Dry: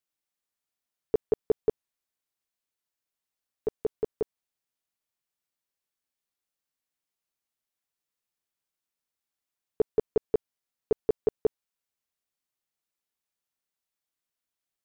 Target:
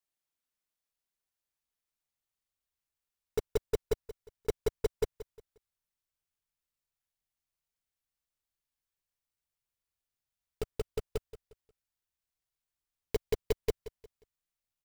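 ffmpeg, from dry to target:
-filter_complex "[0:a]areverse,asubboost=boost=5.5:cutoff=110,acrusher=bits=2:mode=log:mix=0:aa=0.000001,asplit=2[a][b];[b]aecho=0:1:178|356|534:0.168|0.0537|0.0172[c];[a][c]amix=inputs=2:normalize=0,volume=-4.5dB"

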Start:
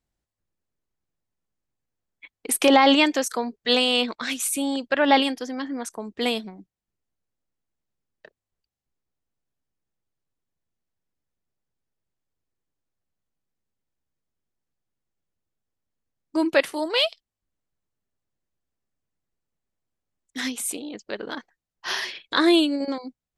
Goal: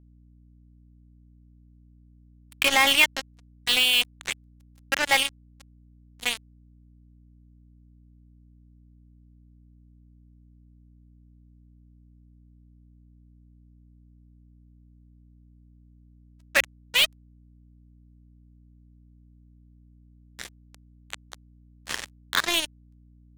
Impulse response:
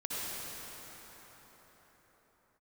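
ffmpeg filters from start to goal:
-af "bandpass=f=2.3k:t=q:w=1.6:csg=0,acrusher=bits=3:mix=0:aa=0.5,aeval=exprs='val(0)+0.00126*(sin(2*PI*60*n/s)+sin(2*PI*2*60*n/s)/2+sin(2*PI*3*60*n/s)/3+sin(2*PI*4*60*n/s)/4+sin(2*PI*5*60*n/s)/5)':c=same,volume=5dB"

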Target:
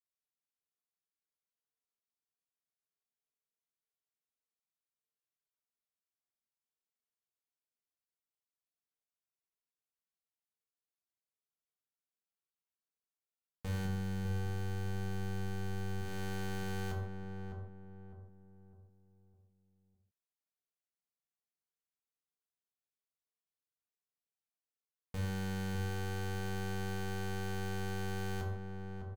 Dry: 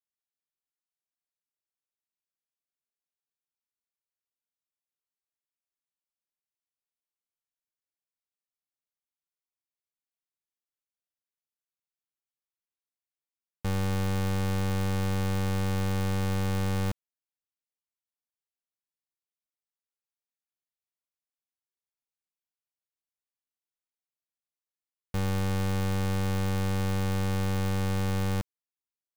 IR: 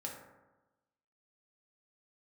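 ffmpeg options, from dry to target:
-filter_complex "[0:a]asettb=1/sr,asplit=3[a][b][c];[a]atrim=end=13.854[d];[b]atrim=start=13.85:end=16.02,asetpts=PTS-STARTPTS,afade=t=in:d=0.004:c=qsin,afade=t=out:st=2.166:d=0.004:c=qsin,lowshelf=f=250:g=7.5[e];[c]atrim=start=16.016[f];[d][e]acrossfade=d=0.004:c1=hsin:c2=qsin[g];[g][f]acrossfade=d=0.004:c1=qsin:c2=hsin,acompressor=threshold=-27dB:ratio=6,asplit=2[h][i];[i]adelay=606,lowpass=f=980:p=1,volume=-5dB,asplit=2[j][k];[k]adelay=606,lowpass=f=980:p=1,volume=0.41,asplit=2[l][m];[m]adelay=606,lowpass=f=980:p=1,volume=0.41,asplit=2[n][o];[o]adelay=606,lowpass=f=980:p=1,volume=0.41,asplit=2[p][q];[q]adelay=606,lowpass=f=980:p=1,volume=0.41[r];[h][j][l][n][p][r]amix=inputs=6:normalize=0[s];[1:a]atrim=start_sample=2205,atrim=end_sample=6174,asetrate=36603,aresample=44100[t];[s][t]afir=irnorm=-1:irlink=0,volume=-6dB"

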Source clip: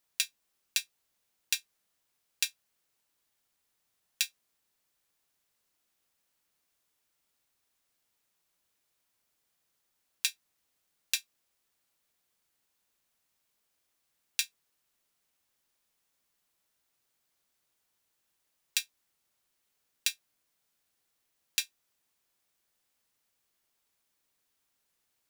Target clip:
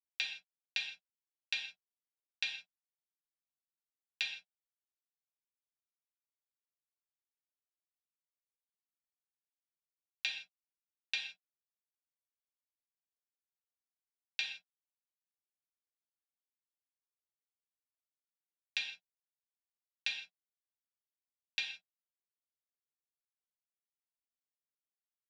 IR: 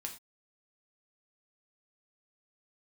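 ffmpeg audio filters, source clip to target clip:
-filter_complex "[0:a]aeval=exprs='sgn(val(0))*max(abs(val(0))-0.00398,0)':c=same,highpass=130,equalizer=f=180:t=q:w=4:g=6,equalizer=f=770:t=q:w=4:g=5,equalizer=f=1.2k:t=q:w=4:g=-9,lowpass=f=3.7k:w=0.5412,lowpass=f=3.7k:w=1.3066[a];[1:a]atrim=start_sample=2205,asetrate=31752,aresample=44100[b];[a][b]afir=irnorm=-1:irlink=0,volume=1dB"

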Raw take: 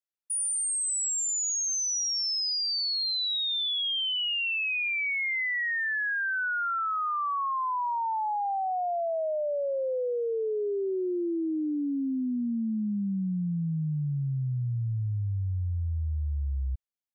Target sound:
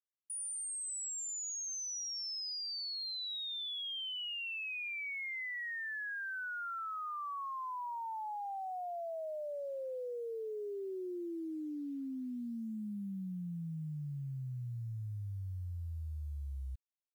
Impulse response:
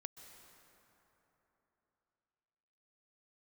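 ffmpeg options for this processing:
-filter_complex "[0:a]asettb=1/sr,asplit=3[a][b][c];[a]atrim=end=5.304[d];[b]atrim=start=5.3:end=6.19,asetpts=PTS-STARTPTS,afade=t=in:d=0.004:c=qsin,afade=t=out:st=0.886:d=0.004:c=qsin,lowpass=7.6k[e];[c]atrim=start=6.186[f];[d][e]acrossfade=d=0.004:c1=hsin:c2=qsin[g];[g][f]acrossfade=d=0.004:c1=qsin:c2=hsin,alimiter=level_in=13.5dB:limit=-24dB:level=0:latency=1:release=442,volume=-13.5dB,acrusher=bits=11:mix=0:aa=0.000001"

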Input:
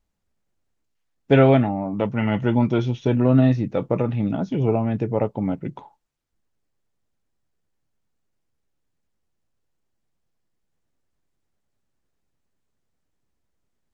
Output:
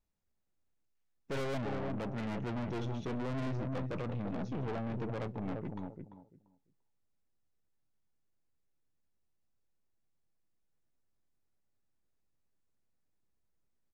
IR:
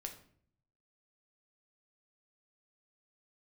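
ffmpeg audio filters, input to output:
-filter_complex "[0:a]bandreject=f=3.1k:w=20,asplit=2[a][b];[b]adelay=343,lowpass=f=1k:p=1,volume=-9dB,asplit=2[c][d];[d]adelay=343,lowpass=f=1k:p=1,volume=0.19,asplit=2[e][f];[f]adelay=343,lowpass=f=1k:p=1,volume=0.19[g];[a][c][e][g]amix=inputs=4:normalize=0,aeval=exprs='(tanh(25.1*val(0)+0.5)-tanh(0.5))/25.1':c=same,asplit=2[h][i];[1:a]atrim=start_sample=2205,atrim=end_sample=3528[j];[i][j]afir=irnorm=-1:irlink=0,volume=-12.5dB[k];[h][k]amix=inputs=2:normalize=0,volume=-8dB"

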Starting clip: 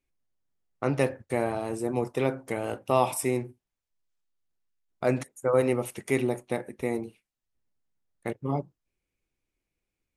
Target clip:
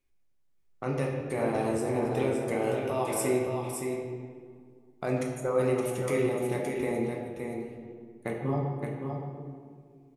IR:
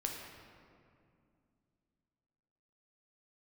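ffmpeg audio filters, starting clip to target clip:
-filter_complex "[0:a]alimiter=limit=-20.5dB:level=0:latency=1:release=237,aecho=1:1:568:0.531[a];[1:a]atrim=start_sample=2205,asetrate=57330,aresample=44100[b];[a][b]afir=irnorm=-1:irlink=0,volume=4dB"

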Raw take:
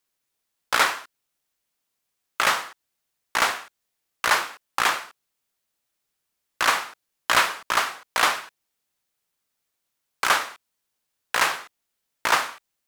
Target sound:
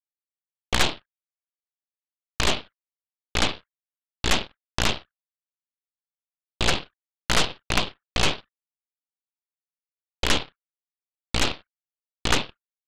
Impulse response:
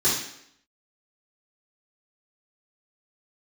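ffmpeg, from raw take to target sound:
-af "highpass=f=180:t=q:w=0.5412,highpass=f=180:t=q:w=1.307,lowpass=f=2.5k:t=q:w=0.5176,lowpass=f=2.5k:t=q:w=0.7071,lowpass=f=2.5k:t=q:w=1.932,afreqshift=240,anlmdn=1,aeval=exprs='0.562*(cos(1*acos(clip(val(0)/0.562,-1,1)))-cos(1*PI/2))+0.2*(cos(3*acos(clip(val(0)/0.562,-1,1)))-cos(3*PI/2))+0.1*(cos(8*acos(clip(val(0)/0.562,-1,1)))-cos(8*PI/2))':c=same,volume=2.5dB"

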